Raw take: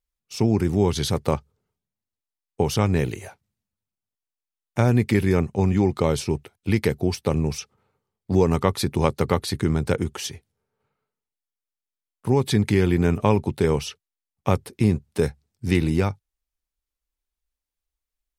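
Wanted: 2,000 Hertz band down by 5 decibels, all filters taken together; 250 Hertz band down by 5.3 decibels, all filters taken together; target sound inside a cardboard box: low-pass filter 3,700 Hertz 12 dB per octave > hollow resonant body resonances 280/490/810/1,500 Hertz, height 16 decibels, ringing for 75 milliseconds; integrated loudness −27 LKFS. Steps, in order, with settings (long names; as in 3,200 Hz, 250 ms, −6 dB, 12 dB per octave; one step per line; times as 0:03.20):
low-pass filter 3,700 Hz 12 dB per octave
parametric band 250 Hz −8 dB
parametric band 2,000 Hz −5.5 dB
hollow resonant body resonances 280/490/810/1,500 Hz, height 16 dB, ringing for 75 ms
level −6 dB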